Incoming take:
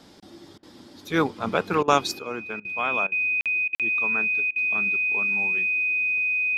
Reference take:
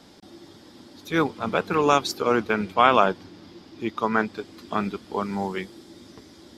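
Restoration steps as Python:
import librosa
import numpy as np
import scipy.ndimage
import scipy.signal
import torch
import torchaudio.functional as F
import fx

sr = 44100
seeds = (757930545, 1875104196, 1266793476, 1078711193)

y = fx.notch(x, sr, hz=2500.0, q=30.0)
y = fx.fix_interpolate(y, sr, at_s=(3.41, 3.75), length_ms=47.0)
y = fx.fix_interpolate(y, sr, at_s=(0.58, 1.83, 2.6, 3.07, 3.68, 4.51), length_ms=48.0)
y = fx.fix_level(y, sr, at_s=2.19, step_db=11.5)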